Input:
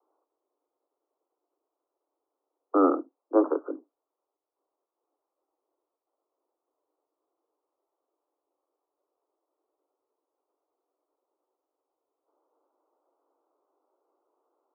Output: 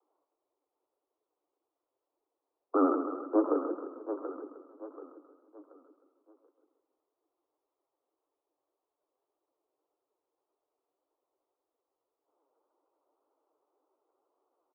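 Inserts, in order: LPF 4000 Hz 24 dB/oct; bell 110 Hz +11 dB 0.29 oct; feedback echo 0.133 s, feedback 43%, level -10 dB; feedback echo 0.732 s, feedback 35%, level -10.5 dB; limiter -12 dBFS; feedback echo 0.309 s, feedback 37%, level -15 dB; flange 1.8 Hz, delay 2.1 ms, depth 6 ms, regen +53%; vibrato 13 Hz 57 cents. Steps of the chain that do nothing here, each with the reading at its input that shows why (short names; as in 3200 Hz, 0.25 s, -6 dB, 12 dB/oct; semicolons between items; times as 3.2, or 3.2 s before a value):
LPF 4000 Hz: input band ends at 1400 Hz; bell 110 Hz: input band starts at 230 Hz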